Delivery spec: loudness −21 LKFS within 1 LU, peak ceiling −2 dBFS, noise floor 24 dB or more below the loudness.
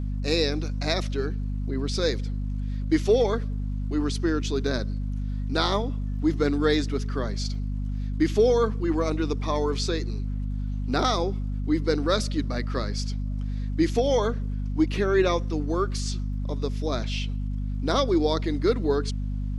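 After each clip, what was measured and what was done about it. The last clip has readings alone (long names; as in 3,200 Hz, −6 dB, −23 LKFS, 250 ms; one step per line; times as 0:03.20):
crackle rate 21 per second; mains hum 50 Hz; hum harmonics up to 250 Hz; level of the hum −26 dBFS; integrated loudness −26.5 LKFS; sample peak −8.5 dBFS; target loudness −21.0 LKFS
→ click removal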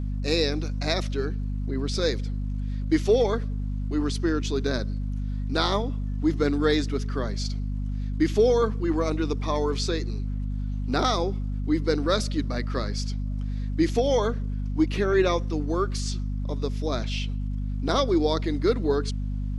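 crackle rate 0.051 per second; mains hum 50 Hz; hum harmonics up to 250 Hz; level of the hum −26 dBFS
→ hum removal 50 Hz, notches 5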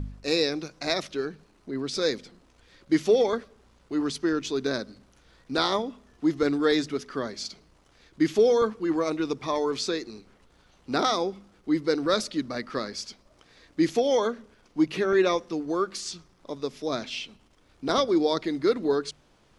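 mains hum none found; integrated loudness −27.0 LKFS; sample peak −10.0 dBFS; target loudness −21.0 LKFS
→ level +6 dB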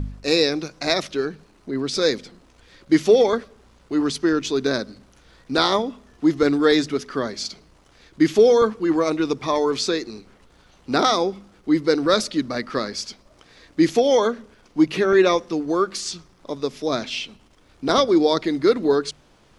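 integrated loudness −21.0 LKFS; sample peak −4.0 dBFS; background noise floor −55 dBFS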